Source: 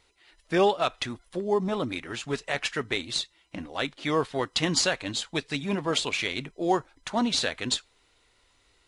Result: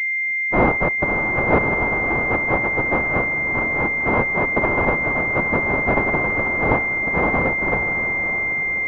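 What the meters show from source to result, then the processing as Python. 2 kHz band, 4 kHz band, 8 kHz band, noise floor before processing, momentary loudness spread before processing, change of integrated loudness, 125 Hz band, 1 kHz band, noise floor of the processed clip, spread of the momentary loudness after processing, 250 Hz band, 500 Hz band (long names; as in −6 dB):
+17.5 dB, below −20 dB, below −20 dB, −66 dBFS, 9 LU, +9.5 dB, +10.5 dB, +9.0 dB, −22 dBFS, 2 LU, +6.0 dB, +6.0 dB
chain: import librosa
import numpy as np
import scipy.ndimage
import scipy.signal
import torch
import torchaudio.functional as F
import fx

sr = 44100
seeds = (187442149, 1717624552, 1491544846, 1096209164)

p1 = np.r_[np.sort(x[:len(x) // 128 * 128].reshape(-1, 128), axis=1).ravel(), x[len(x) // 128 * 128:]]
p2 = fx.rider(p1, sr, range_db=10, speed_s=0.5)
p3 = p1 + (p2 * librosa.db_to_amplitude(-2.0))
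p4 = p3 * (1.0 - 0.34 / 2.0 + 0.34 / 2.0 * np.cos(2.0 * np.pi * 2.0 * (np.arange(len(p3)) / sr)))
p5 = fx.noise_vocoder(p4, sr, seeds[0], bands=1)
p6 = p5 + fx.echo_diffused(p5, sr, ms=607, feedback_pct=51, wet_db=-8.0, dry=0)
p7 = fx.pwm(p6, sr, carrier_hz=2100.0)
y = p7 * librosa.db_to_amplitude(6.5)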